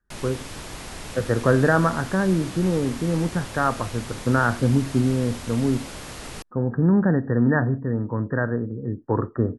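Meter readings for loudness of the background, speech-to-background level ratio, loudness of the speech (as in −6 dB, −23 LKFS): −36.5 LKFS, 13.5 dB, −23.0 LKFS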